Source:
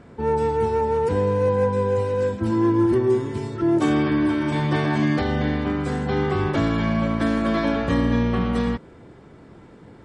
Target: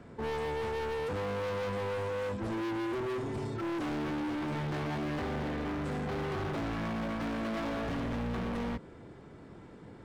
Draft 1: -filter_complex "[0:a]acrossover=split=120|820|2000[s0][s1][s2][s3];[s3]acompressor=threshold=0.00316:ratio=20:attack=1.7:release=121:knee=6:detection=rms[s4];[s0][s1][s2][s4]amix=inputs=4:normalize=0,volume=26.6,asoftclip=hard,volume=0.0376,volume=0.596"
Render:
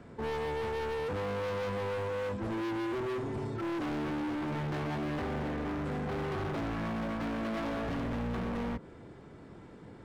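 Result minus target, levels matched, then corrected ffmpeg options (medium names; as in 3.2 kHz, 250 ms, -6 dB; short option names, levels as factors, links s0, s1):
compression: peak gain reduction +8.5 dB
-filter_complex "[0:a]acrossover=split=120|820|2000[s0][s1][s2][s3];[s3]acompressor=threshold=0.00891:ratio=20:attack=1.7:release=121:knee=6:detection=rms[s4];[s0][s1][s2][s4]amix=inputs=4:normalize=0,volume=26.6,asoftclip=hard,volume=0.0376,volume=0.596"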